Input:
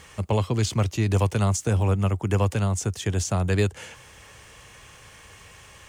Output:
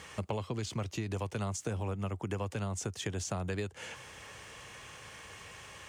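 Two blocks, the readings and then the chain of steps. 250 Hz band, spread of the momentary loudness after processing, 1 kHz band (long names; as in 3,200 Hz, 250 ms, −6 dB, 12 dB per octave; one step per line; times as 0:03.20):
−11.5 dB, 12 LU, −10.0 dB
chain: high-pass filter 130 Hz 6 dB per octave
high-shelf EQ 9,300 Hz −7.5 dB
downward compressor, threshold −33 dBFS, peak gain reduction 13.5 dB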